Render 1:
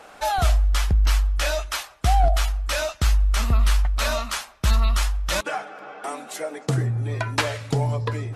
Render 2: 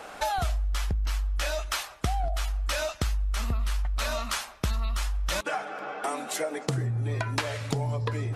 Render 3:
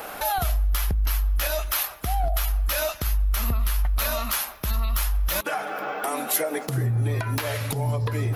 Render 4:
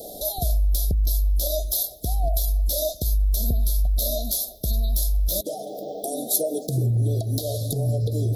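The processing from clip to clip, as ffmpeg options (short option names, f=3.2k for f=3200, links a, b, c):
-filter_complex "[0:a]acrossover=split=4900[a][b];[b]volume=25.5dB,asoftclip=hard,volume=-25.5dB[c];[a][c]amix=inputs=2:normalize=0,acompressor=threshold=-29dB:ratio=6,volume=3dB"
-af "alimiter=limit=-23dB:level=0:latency=1:release=106,aexciter=amount=5:drive=9.5:freq=11k,volume=6dB"
-af "asuperstop=centerf=1600:order=20:qfactor=0.56,volume=2dB"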